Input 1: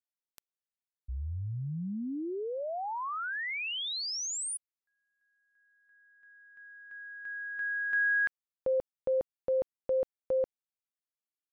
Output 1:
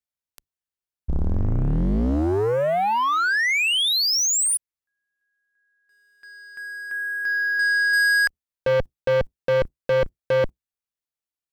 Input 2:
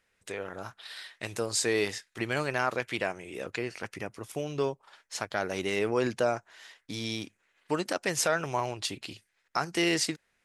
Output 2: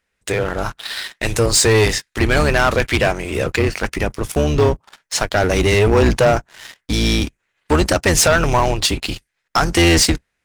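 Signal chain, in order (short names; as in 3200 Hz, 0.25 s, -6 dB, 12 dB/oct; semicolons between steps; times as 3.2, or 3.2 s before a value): octaver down 2 oct, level +2 dB; sample leveller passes 3; gain +6 dB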